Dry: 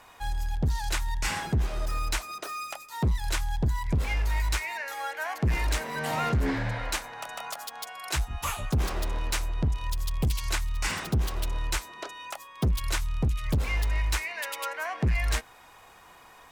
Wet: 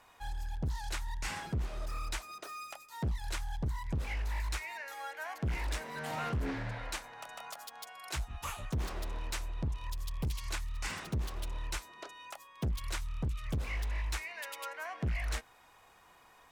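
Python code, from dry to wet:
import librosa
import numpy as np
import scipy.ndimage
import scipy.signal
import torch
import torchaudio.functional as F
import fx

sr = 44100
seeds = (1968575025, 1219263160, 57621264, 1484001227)

y = fx.doppler_dist(x, sr, depth_ms=0.38)
y = F.gain(torch.from_numpy(y), -8.5).numpy()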